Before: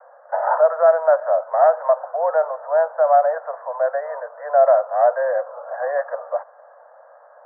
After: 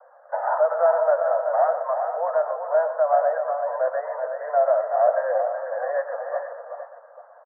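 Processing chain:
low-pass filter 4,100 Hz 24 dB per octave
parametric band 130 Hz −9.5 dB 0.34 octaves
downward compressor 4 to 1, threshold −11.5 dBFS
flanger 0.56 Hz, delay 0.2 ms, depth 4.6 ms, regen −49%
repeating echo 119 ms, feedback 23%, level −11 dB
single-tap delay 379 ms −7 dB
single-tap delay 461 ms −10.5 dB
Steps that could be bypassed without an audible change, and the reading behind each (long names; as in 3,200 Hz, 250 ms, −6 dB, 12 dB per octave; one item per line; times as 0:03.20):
low-pass filter 4,100 Hz: nothing at its input above 1,700 Hz
parametric band 130 Hz: nothing at its input below 430 Hz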